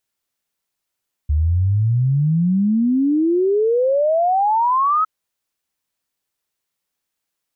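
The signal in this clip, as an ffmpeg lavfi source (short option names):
-f lavfi -i "aevalsrc='0.211*clip(min(t,3.76-t)/0.01,0,1)*sin(2*PI*72*3.76/log(1300/72)*(exp(log(1300/72)*t/3.76)-1))':d=3.76:s=44100"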